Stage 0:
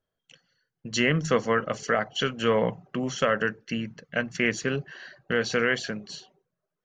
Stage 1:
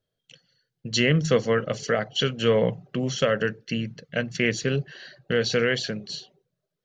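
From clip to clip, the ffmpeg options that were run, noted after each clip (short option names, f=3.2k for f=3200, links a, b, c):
-af "equalizer=f=125:t=o:w=1:g=8,equalizer=f=500:t=o:w=1:g=5,equalizer=f=1k:t=o:w=1:g=-6,equalizer=f=4k:t=o:w=1:g=8,volume=-1dB"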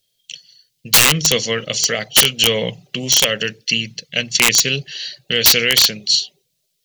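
-af "aexciter=amount=10.5:drive=2.8:freq=2.2k,aeval=exprs='(mod(1.33*val(0)+1,2)-1)/1.33':c=same"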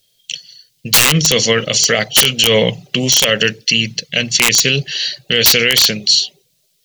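-af "alimiter=level_in=9.5dB:limit=-1dB:release=50:level=0:latency=1,volume=-1dB"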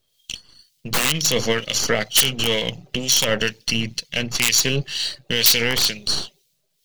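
-filter_complex "[0:a]aeval=exprs='if(lt(val(0),0),0.447*val(0),val(0))':c=same,acrossover=split=2000[a][b];[a]aeval=exprs='val(0)*(1-0.7/2+0.7/2*cos(2*PI*2.1*n/s))':c=same[c];[b]aeval=exprs='val(0)*(1-0.7/2-0.7/2*cos(2*PI*2.1*n/s))':c=same[d];[c][d]amix=inputs=2:normalize=0,volume=-1.5dB"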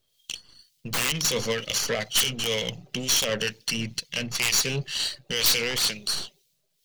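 -af "aeval=exprs='(tanh(6.31*val(0)+0.6)-tanh(0.6))/6.31':c=same"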